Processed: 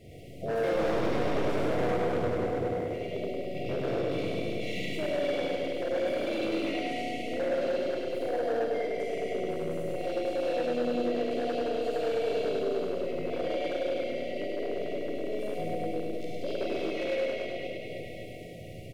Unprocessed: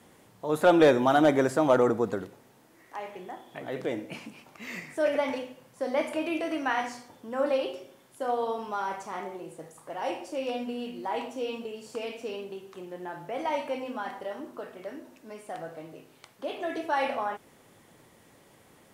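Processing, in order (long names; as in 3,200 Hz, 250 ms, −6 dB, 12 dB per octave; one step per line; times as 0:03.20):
comb filter 2.2 ms, depth 81%
four-comb reverb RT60 2.8 s, combs from 33 ms, DRR −5.5 dB
downward compressor 2 to 1, threshold −34 dBFS, peak gain reduction 14.5 dB
bass and treble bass +12 dB, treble −9 dB
pitch-shifted copies added −7 semitones −11 dB, +4 semitones −11 dB, +7 semitones −5 dB
brick-wall band-stop 750–1,900 Hz
hard clipping −26 dBFS, distortion −9 dB
on a send: repeating echo 103 ms, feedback 56%, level −5.5 dB
on the sum: level −1.5 dB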